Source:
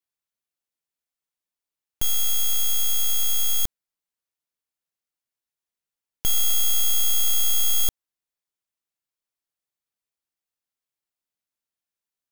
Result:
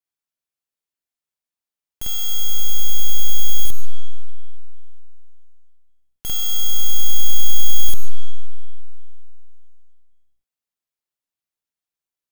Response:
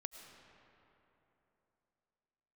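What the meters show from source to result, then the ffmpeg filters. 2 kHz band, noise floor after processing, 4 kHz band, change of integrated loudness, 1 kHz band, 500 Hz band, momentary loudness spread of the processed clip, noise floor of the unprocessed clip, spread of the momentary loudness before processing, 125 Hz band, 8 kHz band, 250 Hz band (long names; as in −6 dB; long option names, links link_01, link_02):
−2.0 dB, below −85 dBFS, +1.0 dB, −1.5 dB, −0.5 dB, −0.5 dB, 10 LU, below −85 dBFS, 6 LU, +14.0 dB, −3.5 dB, +4.0 dB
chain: -filter_complex "[0:a]asplit=2[link_01][link_02];[1:a]atrim=start_sample=2205,adelay=49[link_03];[link_02][link_03]afir=irnorm=-1:irlink=0,volume=6.5dB[link_04];[link_01][link_04]amix=inputs=2:normalize=0,volume=-5.5dB"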